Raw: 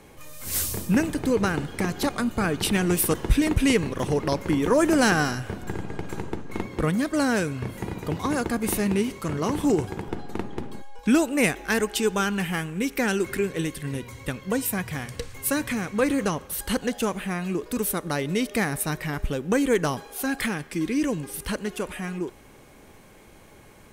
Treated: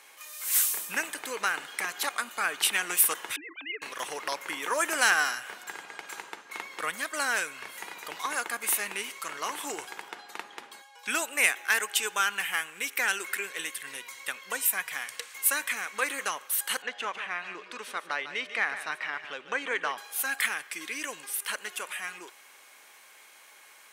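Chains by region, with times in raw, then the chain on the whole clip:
0:03.36–0:03.82: three sine waves on the formant tracks + downward compressor 2 to 1, threshold −31 dBFS
0:16.82–0:19.98: low-pass filter 3,100 Hz + single-tap delay 148 ms −11.5 dB
whole clip: high-pass filter 1,300 Hz 12 dB per octave; dynamic equaliser 4,800 Hz, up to −6 dB, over −49 dBFS, Q 1.8; level +3.5 dB

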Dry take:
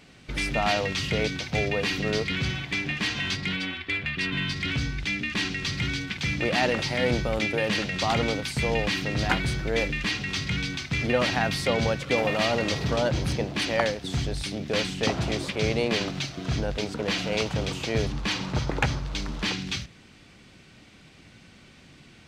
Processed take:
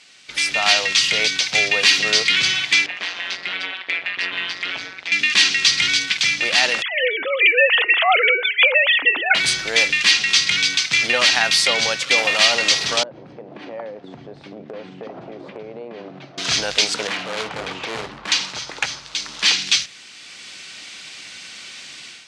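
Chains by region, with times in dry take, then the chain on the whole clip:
0:02.86–0:05.12: resonant band-pass 660 Hz, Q 0.67 + parametric band 640 Hz +7.5 dB 0.37 octaves + amplitude modulation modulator 180 Hz, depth 90%
0:06.82–0:09.35: three sine waves on the formant tracks + hum removal 207.6 Hz, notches 14
0:13.03–0:16.38: flat-topped band-pass 280 Hz, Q 0.53 + downward compressor 12 to 1, threshold −32 dBFS
0:17.07–0:18.32: low-pass filter 1,300 Hz + double-tracking delay 32 ms −12 dB + gain into a clipping stage and back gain 29 dB
whole clip: meter weighting curve ITU-R 468; automatic gain control; level −1 dB

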